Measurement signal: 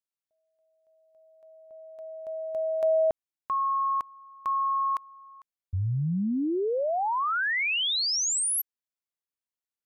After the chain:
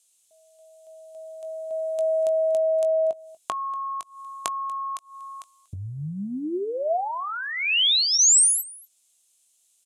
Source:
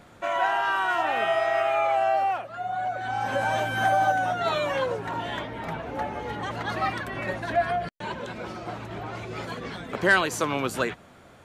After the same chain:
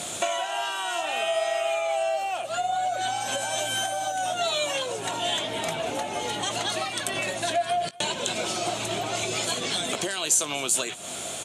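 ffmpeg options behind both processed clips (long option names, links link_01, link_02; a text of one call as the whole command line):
ffmpeg -i in.wav -filter_complex "[0:a]aemphasis=mode=production:type=75kf,bandreject=frequency=5700:width=19,alimiter=limit=-15dB:level=0:latency=1:release=388,acompressor=threshold=-38dB:ratio=20:attack=10:release=380:knee=1:detection=peak,aexciter=amount=3.8:drive=6.4:freq=2600,highpass=110,equalizer=frequency=360:width_type=q:width=4:gain=4,equalizer=frequency=670:width_type=q:width=4:gain=9,equalizer=frequency=4800:width_type=q:width=4:gain=-7,lowpass=frequency=8900:width=0.5412,lowpass=frequency=8900:width=1.3066,asplit=2[link_01][link_02];[link_02]adelay=20,volume=-13dB[link_03];[link_01][link_03]amix=inputs=2:normalize=0,asplit=2[link_04][link_05];[link_05]aecho=0:1:239:0.075[link_06];[link_04][link_06]amix=inputs=2:normalize=0,volume=9dB" out.wav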